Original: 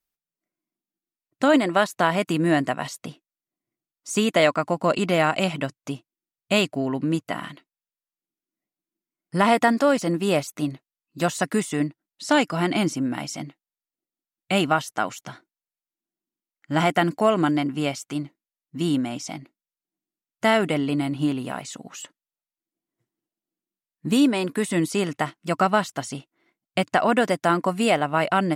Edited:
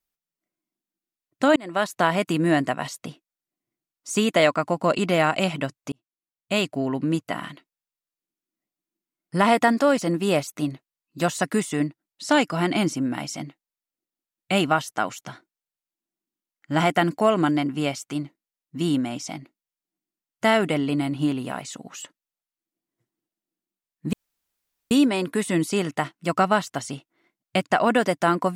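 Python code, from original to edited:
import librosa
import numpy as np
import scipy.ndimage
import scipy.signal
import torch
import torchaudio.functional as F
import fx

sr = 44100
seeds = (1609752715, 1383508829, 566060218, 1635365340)

y = fx.edit(x, sr, fx.fade_in_span(start_s=1.56, length_s=0.36),
    fx.fade_in_span(start_s=5.92, length_s=0.9),
    fx.insert_room_tone(at_s=24.13, length_s=0.78), tone=tone)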